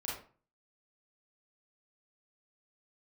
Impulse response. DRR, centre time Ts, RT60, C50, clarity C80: -6.0 dB, 47 ms, 0.40 s, 2.0 dB, 8.5 dB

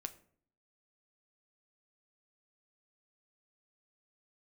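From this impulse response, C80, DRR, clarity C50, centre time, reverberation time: 20.0 dB, 8.0 dB, 16.0 dB, 5 ms, 0.55 s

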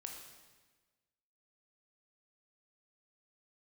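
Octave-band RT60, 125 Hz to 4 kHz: 1.5 s, 1.4 s, 1.4 s, 1.3 s, 1.3 s, 1.2 s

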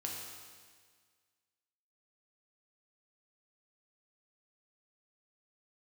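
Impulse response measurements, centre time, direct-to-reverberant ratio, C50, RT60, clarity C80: 82 ms, -2.0 dB, 1.0 dB, 1.7 s, 3.0 dB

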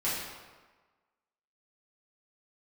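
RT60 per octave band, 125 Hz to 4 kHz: 1.1 s, 1.2 s, 1.3 s, 1.4 s, 1.2 s, 0.95 s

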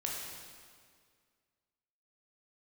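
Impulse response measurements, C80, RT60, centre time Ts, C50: 2.0 dB, 2.0 s, 96 ms, 0.0 dB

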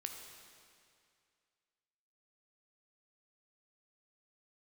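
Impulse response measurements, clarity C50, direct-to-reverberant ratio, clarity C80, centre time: 4.5 dB, 3.5 dB, 5.5 dB, 58 ms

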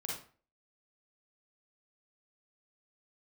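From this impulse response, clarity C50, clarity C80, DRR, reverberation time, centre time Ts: 0.5 dB, 8.0 dB, -3.5 dB, 0.40 s, 46 ms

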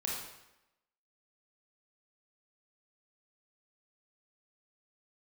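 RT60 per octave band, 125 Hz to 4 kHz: 0.80 s, 0.90 s, 0.90 s, 0.95 s, 0.90 s, 0.80 s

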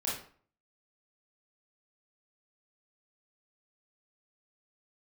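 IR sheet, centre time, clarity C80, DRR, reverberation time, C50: 45 ms, 8.5 dB, -6.5 dB, 0.50 s, 2.5 dB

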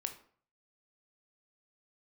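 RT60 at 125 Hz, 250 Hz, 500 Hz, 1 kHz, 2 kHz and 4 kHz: 0.65 s, 0.50 s, 0.50 s, 0.50 s, 0.45 s, 0.35 s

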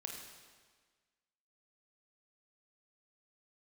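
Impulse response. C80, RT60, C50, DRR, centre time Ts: 4.5 dB, 1.5 s, 2.5 dB, 0.5 dB, 57 ms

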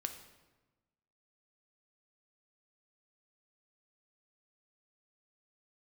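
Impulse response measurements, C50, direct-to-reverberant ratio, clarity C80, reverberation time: 9.5 dB, 6.0 dB, 11.5 dB, 1.2 s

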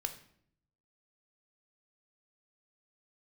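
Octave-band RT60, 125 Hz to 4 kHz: 1.1 s, 0.90 s, 0.70 s, 0.60 s, 0.55 s, 0.50 s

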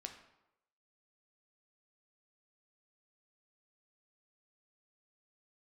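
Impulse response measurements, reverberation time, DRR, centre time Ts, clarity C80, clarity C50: 0.90 s, 4.0 dB, 18 ms, 11.0 dB, 8.5 dB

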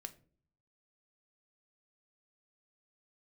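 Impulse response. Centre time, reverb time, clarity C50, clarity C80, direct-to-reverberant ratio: 4 ms, 0.50 s, 17.5 dB, 21.5 dB, 9.0 dB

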